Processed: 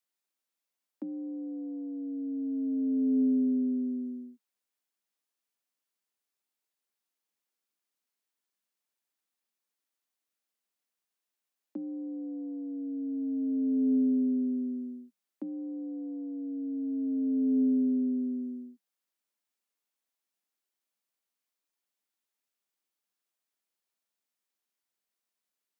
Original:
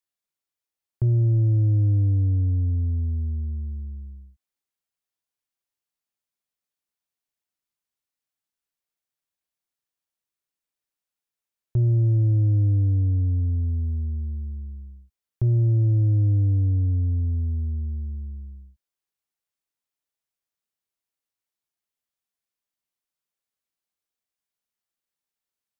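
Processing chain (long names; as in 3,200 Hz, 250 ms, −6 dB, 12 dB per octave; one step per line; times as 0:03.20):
compressor whose output falls as the input rises −25 dBFS, ratio −0.5
frequency shifter +180 Hz
level −4 dB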